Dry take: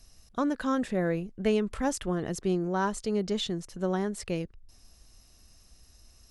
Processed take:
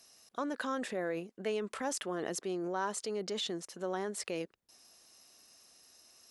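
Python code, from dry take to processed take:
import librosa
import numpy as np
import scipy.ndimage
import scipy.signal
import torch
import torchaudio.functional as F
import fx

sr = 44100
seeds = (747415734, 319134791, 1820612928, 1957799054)

p1 = scipy.signal.sosfilt(scipy.signal.butter(2, 370.0, 'highpass', fs=sr, output='sos'), x)
p2 = fx.over_compress(p1, sr, threshold_db=-37.0, ratio=-1.0)
p3 = p1 + (p2 * 10.0 ** (-1.0 / 20.0))
y = p3 * 10.0 ** (-7.0 / 20.0)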